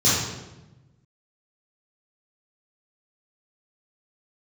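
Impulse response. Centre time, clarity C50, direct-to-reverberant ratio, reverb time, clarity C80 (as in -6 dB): 76 ms, -1.0 dB, -9.5 dB, 1.0 s, 3.0 dB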